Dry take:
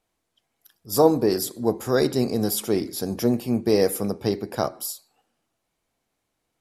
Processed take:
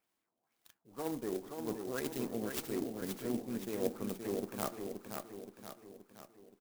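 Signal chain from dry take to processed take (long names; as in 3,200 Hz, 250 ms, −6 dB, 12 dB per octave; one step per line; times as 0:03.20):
high-pass filter 200 Hz 12 dB per octave
parametric band 570 Hz −6 dB 1.1 octaves
reversed playback
downward compressor 10 to 1, threshold −31 dBFS, peak gain reduction 16.5 dB
reversed playback
harmonic generator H 3 −16 dB, 8 −34 dB, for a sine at −19 dBFS
auto-filter low-pass sine 2 Hz 620–6,300 Hz
repeating echo 524 ms, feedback 51%, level −5.5 dB
converter with an unsteady clock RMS 0.064 ms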